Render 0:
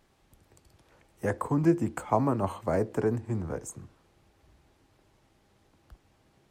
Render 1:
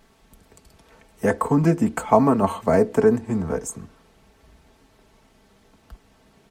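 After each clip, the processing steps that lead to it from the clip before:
comb filter 4.5 ms, depth 58%
level +8 dB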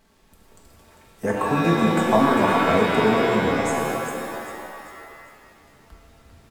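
surface crackle 460 per second −53 dBFS
on a send: echo with shifted repeats 398 ms, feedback 42%, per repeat +41 Hz, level −8 dB
on the sum: reverb with rising layers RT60 1.9 s, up +7 semitones, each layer −2 dB, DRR 0.5 dB
level −4.5 dB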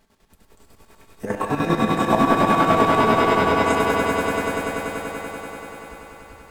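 square-wave tremolo 10 Hz, depth 60%, duty 50%
on a send: echo that builds up and dies away 96 ms, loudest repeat 5, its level −8 dB

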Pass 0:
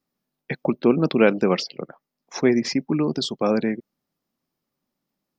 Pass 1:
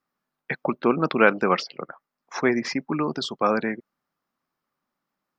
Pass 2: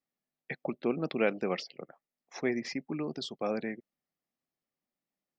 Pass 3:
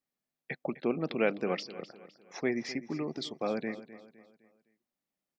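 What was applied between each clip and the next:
parametric band 1,300 Hz +14 dB 1.7 octaves; level −6 dB
flat-topped bell 1,200 Hz −10 dB 1 octave; level −9 dB
repeating echo 256 ms, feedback 42%, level −15.5 dB

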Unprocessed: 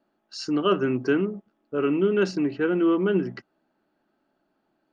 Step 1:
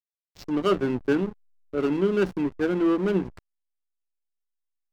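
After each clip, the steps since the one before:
slack as between gear wheels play −23.5 dBFS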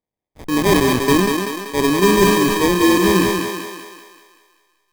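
sample-rate reduction 1,400 Hz, jitter 0%
on a send: feedback echo with a high-pass in the loop 192 ms, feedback 54%, high-pass 270 Hz, level −4 dB
on the sum: level that may fall only so fast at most 34 dB per second
level +7 dB

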